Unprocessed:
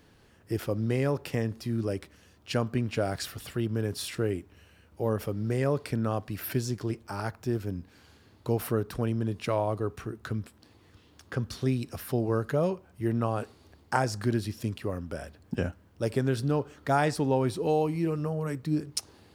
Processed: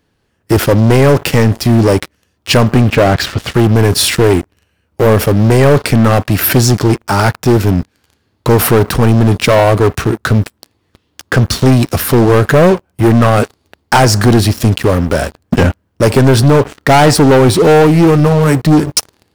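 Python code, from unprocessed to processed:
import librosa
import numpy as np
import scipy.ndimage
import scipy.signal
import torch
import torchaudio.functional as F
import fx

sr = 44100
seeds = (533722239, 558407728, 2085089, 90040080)

y = fx.lowpass(x, sr, hz=fx.line((2.89, 2300.0), (3.53, 4900.0)), slope=12, at=(2.89, 3.53), fade=0.02)
y = fx.leveller(y, sr, passes=5)
y = F.gain(torch.from_numpy(y), 7.0).numpy()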